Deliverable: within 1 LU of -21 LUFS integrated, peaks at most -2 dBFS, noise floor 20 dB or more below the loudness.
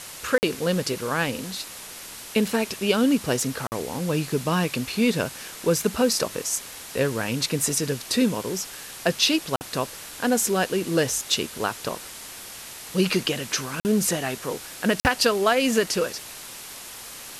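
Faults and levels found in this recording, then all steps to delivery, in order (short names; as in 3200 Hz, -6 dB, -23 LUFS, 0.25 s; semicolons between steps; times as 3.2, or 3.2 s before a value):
dropouts 5; longest dropout 49 ms; noise floor -40 dBFS; noise floor target -45 dBFS; loudness -24.5 LUFS; peak -6.0 dBFS; loudness target -21.0 LUFS
-> interpolate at 0.38/3.67/9.56/13.8/15, 49 ms; denoiser 6 dB, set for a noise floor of -40 dBFS; gain +3.5 dB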